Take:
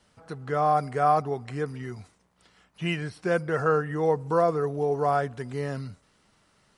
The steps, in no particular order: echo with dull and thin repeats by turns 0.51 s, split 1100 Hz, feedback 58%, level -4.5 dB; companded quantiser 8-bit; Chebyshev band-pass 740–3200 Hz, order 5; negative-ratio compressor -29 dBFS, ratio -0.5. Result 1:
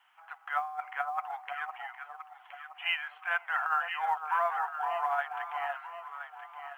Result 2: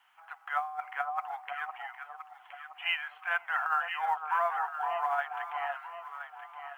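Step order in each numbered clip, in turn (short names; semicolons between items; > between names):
Chebyshev band-pass > negative-ratio compressor > echo with dull and thin repeats by turns > companded quantiser; Chebyshev band-pass > companded quantiser > negative-ratio compressor > echo with dull and thin repeats by turns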